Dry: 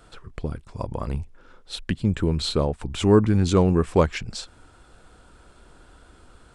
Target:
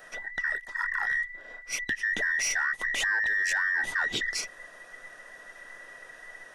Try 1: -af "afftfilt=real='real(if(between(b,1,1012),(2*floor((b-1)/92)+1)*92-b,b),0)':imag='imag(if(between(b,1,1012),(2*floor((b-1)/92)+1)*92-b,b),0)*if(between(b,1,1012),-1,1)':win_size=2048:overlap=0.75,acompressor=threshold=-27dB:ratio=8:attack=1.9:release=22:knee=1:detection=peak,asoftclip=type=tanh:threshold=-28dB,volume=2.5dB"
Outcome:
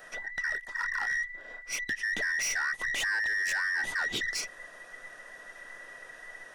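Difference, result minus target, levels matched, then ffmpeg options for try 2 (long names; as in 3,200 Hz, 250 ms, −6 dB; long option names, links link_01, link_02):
soft clipping: distortion +14 dB
-af "afftfilt=real='real(if(between(b,1,1012),(2*floor((b-1)/92)+1)*92-b,b),0)':imag='imag(if(between(b,1,1012),(2*floor((b-1)/92)+1)*92-b,b),0)*if(between(b,1,1012),-1,1)':win_size=2048:overlap=0.75,acompressor=threshold=-27dB:ratio=8:attack=1.9:release=22:knee=1:detection=peak,asoftclip=type=tanh:threshold=-18.5dB,volume=2.5dB"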